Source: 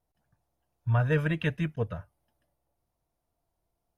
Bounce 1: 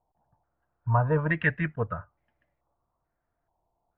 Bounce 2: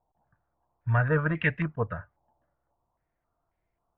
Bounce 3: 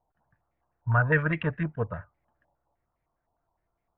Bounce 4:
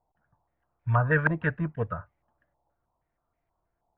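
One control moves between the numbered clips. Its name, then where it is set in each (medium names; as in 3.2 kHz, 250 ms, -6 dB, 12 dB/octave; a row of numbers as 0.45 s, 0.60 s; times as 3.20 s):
step-sequenced low-pass, rate: 2.3 Hz, 3.7 Hz, 9.8 Hz, 6.3 Hz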